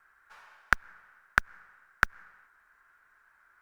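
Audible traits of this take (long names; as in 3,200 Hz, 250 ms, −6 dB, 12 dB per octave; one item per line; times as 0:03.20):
background noise floor −66 dBFS
spectral slope −2.5 dB per octave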